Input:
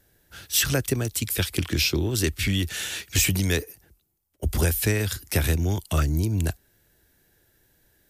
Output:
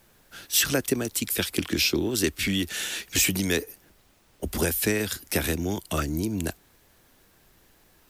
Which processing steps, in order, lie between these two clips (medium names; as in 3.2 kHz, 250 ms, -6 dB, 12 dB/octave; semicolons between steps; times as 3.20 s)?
resonant low shelf 160 Hz -8.5 dB, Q 1.5; added noise pink -61 dBFS